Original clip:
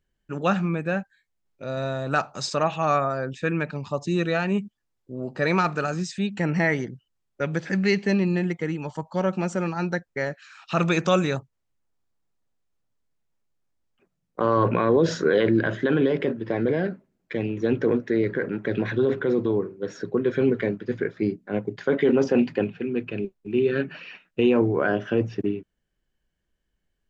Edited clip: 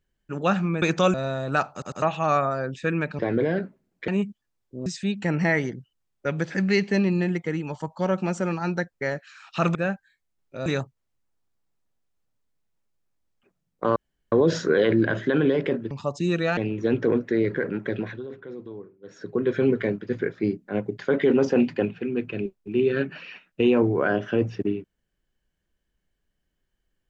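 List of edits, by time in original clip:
0.82–1.73 s: swap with 10.90–11.22 s
2.31 s: stutter in place 0.10 s, 3 plays
3.78–4.44 s: swap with 16.47–17.36 s
5.22–6.01 s: delete
14.52–14.88 s: room tone
18.61–20.24 s: dip -15.5 dB, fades 0.41 s

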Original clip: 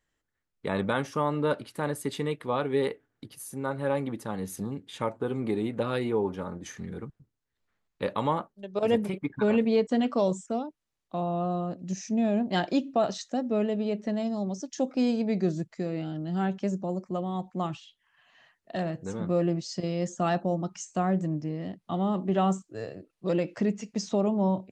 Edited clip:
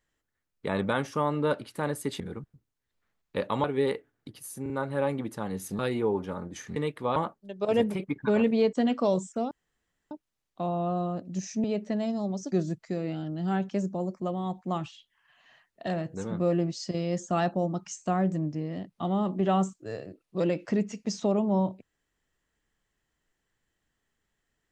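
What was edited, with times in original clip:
2.20–2.60 s: swap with 6.86–8.30 s
3.58 s: stutter 0.04 s, 3 plays
4.67–5.89 s: delete
10.65 s: insert room tone 0.60 s
12.18–13.81 s: delete
14.69–15.41 s: delete

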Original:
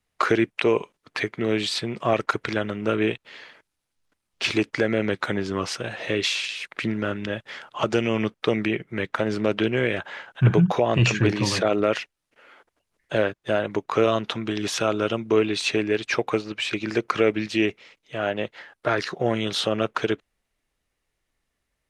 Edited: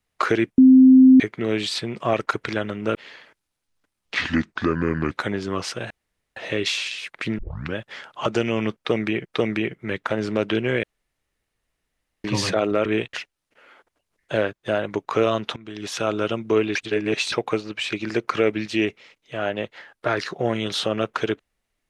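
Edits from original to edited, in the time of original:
0.58–1.20 s: bleep 260 Hz -7 dBFS
2.95–3.23 s: move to 11.94 s
4.42–5.15 s: speed 75%
5.94 s: insert room tone 0.46 s
6.96 s: tape start 0.37 s
8.34–8.83 s: loop, 2 plays
9.92–11.33 s: room tone
14.37–14.92 s: fade in, from -19 dB
15.56–16.13 s: reverse

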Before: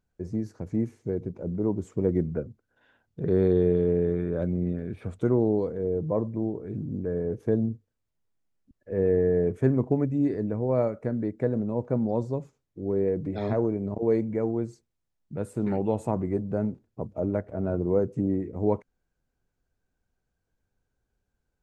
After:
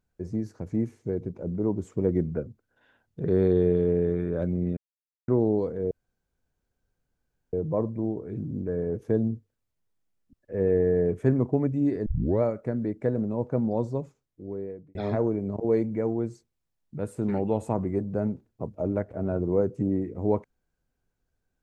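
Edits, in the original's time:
4.77–5.28 s: mute
5.91 s: insert room tone 1.62 s
10.44 s: tape start 0.36 s
12.36–13.33 s: fade out

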